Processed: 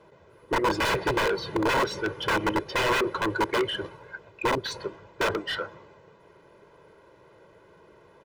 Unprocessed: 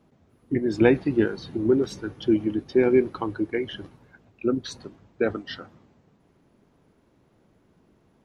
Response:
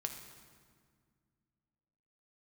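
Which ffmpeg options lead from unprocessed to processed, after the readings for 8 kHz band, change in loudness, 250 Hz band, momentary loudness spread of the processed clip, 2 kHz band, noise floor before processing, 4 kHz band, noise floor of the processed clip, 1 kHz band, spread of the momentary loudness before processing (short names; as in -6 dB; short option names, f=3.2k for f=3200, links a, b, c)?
n/a, -2.5 dB, -8.0 dB, 12 LU, +7.0 dB, -63 dBFS, +9.0 dB, -56 dBFS, +11.5 dB, 16 LU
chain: -filter_complex "[0:a]aeval=exprs='(mod(9.44*val(0)+1,2)-1)/9.44':c=same,aecho=1:1:2:0.81,asplit=2[a][b];[b]highpass=f=720:p=1,volume=21dB,asoftclip=type=tanh:threshold=-14dB[c];[a][c]amix=inputs=2:normalize=0,lowpass=f=1.7k:p=1,volume=-6dB,volume=-2dB"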